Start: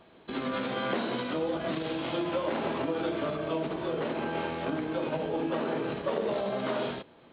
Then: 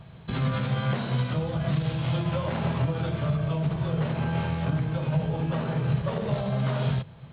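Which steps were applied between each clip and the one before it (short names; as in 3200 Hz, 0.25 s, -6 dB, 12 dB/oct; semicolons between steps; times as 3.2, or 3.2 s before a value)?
resonant low shelf 200 Hz +14 dB, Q 3; vocal rider within 4 dB 0.5 s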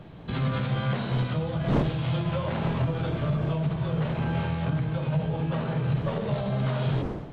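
wind noise 400 Hz -37 dBFS; soft clip -14 dBFS, distortion -25 dB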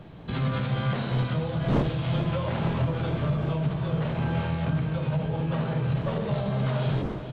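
echo 0.435 s -11 dB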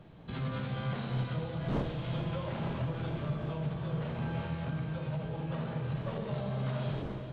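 Schroeder reverb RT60 3.1 s, combs from 31 ms, DRR 8 dB; gain -8.5 dB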